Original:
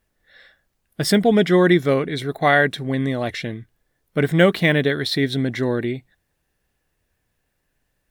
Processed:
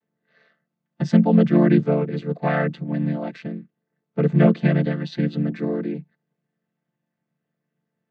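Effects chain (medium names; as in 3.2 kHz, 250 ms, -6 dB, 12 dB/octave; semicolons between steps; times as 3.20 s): vocoder on a held chord minor triad, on D3; treble shelf 5.8 kHz -7 dB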